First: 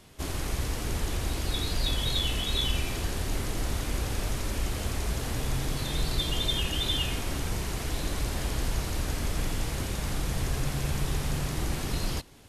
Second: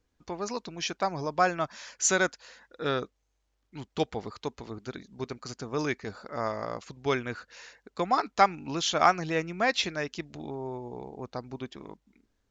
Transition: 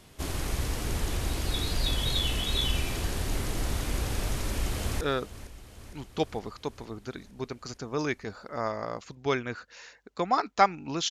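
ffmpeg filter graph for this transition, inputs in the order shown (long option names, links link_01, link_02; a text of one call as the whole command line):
ffmpeg -i cue0.wav -i cue1.wav -filter_complex "[0:a]apad=whole_dur=11.1,atrim=end=11.1,atrim=end=5.012[link_01];[1:a]atrim=start=2.808:end=8.9[link_02];[link_01][link_02]acrossfade=duration=0.004:curve1=hsin:curve2=hsin,asplit=2[link_03][link_04];[link_04]afade=type=in:start_time=4.41:duration=0.01,afade=type=out:start_time=5.01:duration=0.01,aecho=0:1:460|920|1380|1840|2300|2760|3220|3680|4140:0.188365|0.131855|0.0922988|0.0646092|0.0452264|0.0316585|0.0221609|0.0155127|0.0108589[link_05];[link_03][link_05]amix=inputs=2:normalize=0" out.wav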